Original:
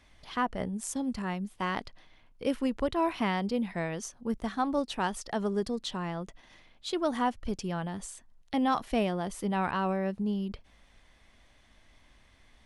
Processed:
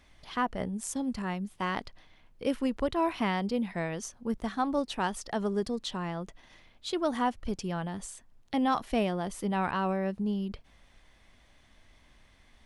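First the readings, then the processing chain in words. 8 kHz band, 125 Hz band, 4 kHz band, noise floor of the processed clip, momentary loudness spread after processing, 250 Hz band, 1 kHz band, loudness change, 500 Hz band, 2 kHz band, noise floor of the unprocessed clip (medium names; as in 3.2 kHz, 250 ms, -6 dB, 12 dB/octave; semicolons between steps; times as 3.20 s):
0.0 dB, 0.0 dB, 0.0 dB, -61 dBFS, 9 LU, 0.0 dB, 0.0 dB, 0.0 dB, 0.0 dB, 0.0 dB, -62 dBFS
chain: added noise brown -67 dBFS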